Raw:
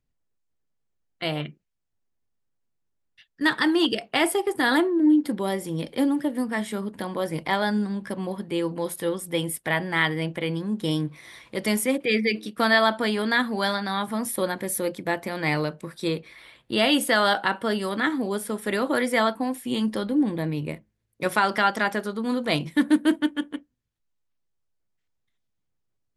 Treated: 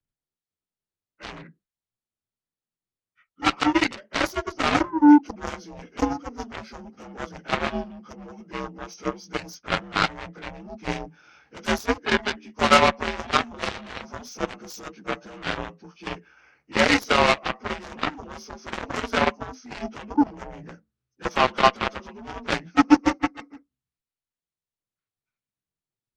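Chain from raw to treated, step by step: frequency axis rescaled in octaves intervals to 84%; Chebyshev shaper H 3 -22 dB, 7 -17 dB, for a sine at -8 dBFS; trim +7 dB

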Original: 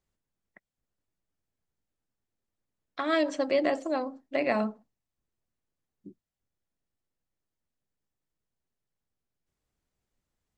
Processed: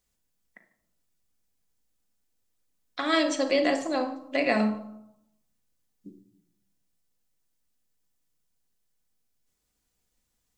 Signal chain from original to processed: treble shelf 3.1 kHz +12 dB; on a send: reverberation RT60 0.80 s, pre-delay 4 ms, DRR 4.5 dB

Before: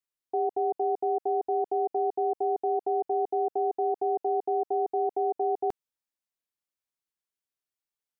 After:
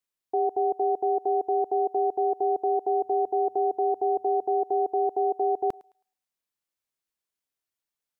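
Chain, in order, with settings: 2.81–4.52 s: hum notches 60/120/180/240 Hz; on a send: thinning echo 107 ms, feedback 31%, high-pass 680 Hz, level -19.5 dB; on the sum: trim +2.5 dB

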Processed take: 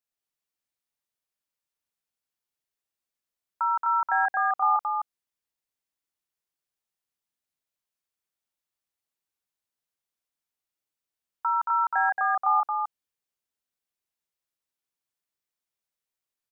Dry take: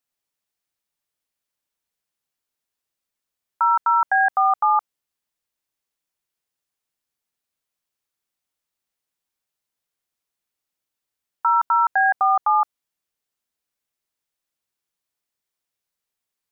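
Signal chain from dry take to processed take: delay 225 ms -3 dB; trim -7.5 dB

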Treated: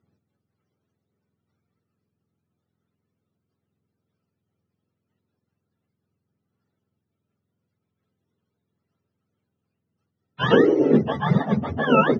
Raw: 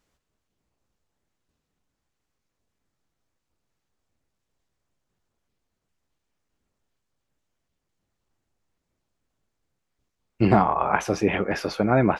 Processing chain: spectrum inverted on a logarithmic axis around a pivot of 590 Hz; low-pass 4.3 kHz 12 dB/octave; small resonant body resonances 200/400/1300 Hz, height 8 dB, ringing for 20 ms

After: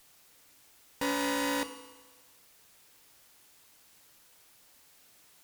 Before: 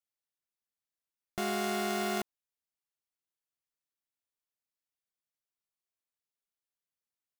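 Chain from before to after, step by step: jump at every zero crossing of -38.5 dBFS; Chebyshev shaper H 5 -35 dB, 6 -15 dB, 7 -18 dB, 8 -16 dB, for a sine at -21.5 dBFS; wide varispeed 1.36×; FDN reverb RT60 1.3 s, low-frequency decay 0.85×, high-frequency decay 1×, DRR 8.5 dB

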